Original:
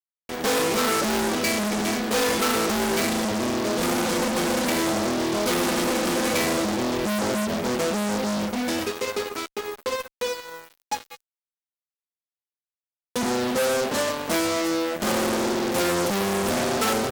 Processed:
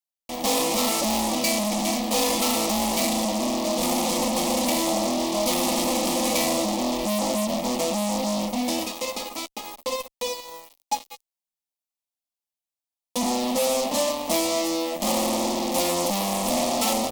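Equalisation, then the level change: peaking EQ 160 Hz -5.5 dB 1.1 oct; static phaser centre 410 Hz, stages 6; +3.5 dB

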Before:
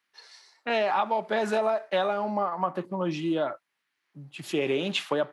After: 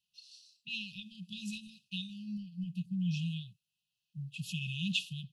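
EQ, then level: brick-wall FIR band-stop 200–2500 Hz; tilt shelf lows +4 dB; 0.0 dB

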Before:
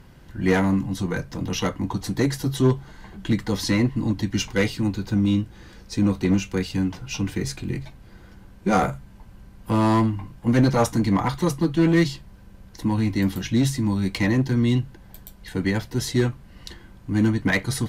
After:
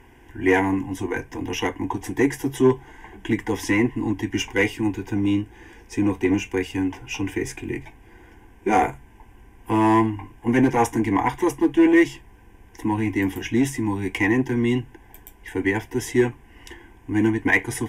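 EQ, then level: bass shelf 120 Hz -9.5 dB; treble shelf 8.8 kHz -8 dB; static phaser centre 860 Hz, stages 8; +6.0 dB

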